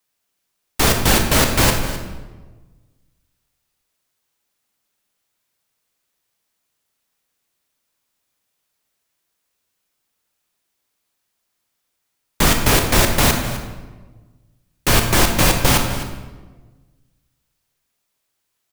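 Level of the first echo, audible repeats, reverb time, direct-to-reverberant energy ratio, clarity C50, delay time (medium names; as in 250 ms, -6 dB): -14.0 dB, 1, 1.3 s, 3.5 dB, 5.0 dB, 257 ms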